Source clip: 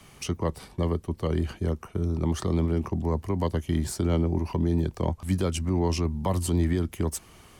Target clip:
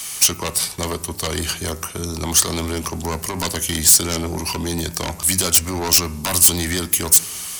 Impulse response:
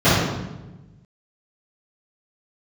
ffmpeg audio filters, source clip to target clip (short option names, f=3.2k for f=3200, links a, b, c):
-filter_complex "[0:a]tiltshelf=f=660:g=-9.5,aeval=exprs='0.224*sin(PI/2*3.16*val(0)/0.224)':c=same,bass=f=250:g=1,treble=f=4k:g=14,bandreject=f=99.33:t=h:w=4,bandreject=f=198.66:t=h:w=4,bandreject=f=297.99:t=h:w=4,bandreject=f=397.32:t=h:w=4,bandreject=f=496.65:t=h:w=4,bandreject=f=595.98:t=h:w=4,bandreject=f=695.31:t=h:w=4,bandreject=f=794.64:t=h:w=4,bandreject=f=893.97:t=h:w=4,bandreject=f=993.3:t=h:w=4,bandreject=f=1.09263k:t=h:w=4,bandreject=f=1.19196k:t=h:w=4,bandreject=f=1.29129k:t=h:w=4,bandreject=f=1.39062k:t=h:w=4,bandreject=f=1.48995k:t=h:w=4,bandreject=f=1.58928k:t=h:w=4,bandreject=f=1.68861k:t=h:w=4,bandreject=f=1.78794k:t=h:w=4,bandreject=f=1.88727k:t=h:w=4,bandreject=f=1.9866k:t=h:w=4,bandreject=f=2.08593k:t=h:w=4,bandreject=f=2.18526k:t=h:w=4,bandreject=f=2.28459k:t=h:w=4,bandreject=f=2.38392k:t=h:w=4,bandreject=f=2.48325k:t=h:w=4,bandreject=f=2.58258k:t=h:w=4,bandreject=f=2.68191k:t=h:w=4,bandreject=f=2.78124k:t=h:w=4,asplit=2[a][b];[1:a]atrim=start_sample=2205[c];[b][c]afir=irnorm=-1:irlink=0,volume=-46dB[d];[a][d]amix=inputs=2:normalize=0,volume=-5.5dB"